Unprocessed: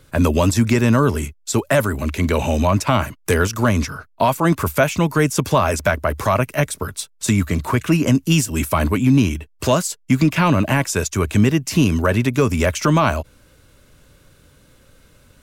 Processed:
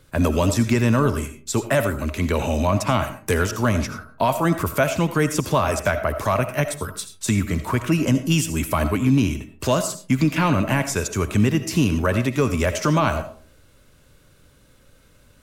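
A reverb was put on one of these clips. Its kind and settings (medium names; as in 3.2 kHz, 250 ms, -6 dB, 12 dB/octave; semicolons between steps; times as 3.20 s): algorithmic reverb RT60 0.41 s, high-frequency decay 0.45×, pre-delay 40 ms, DRR 9.5 dB; trim -3.5 dB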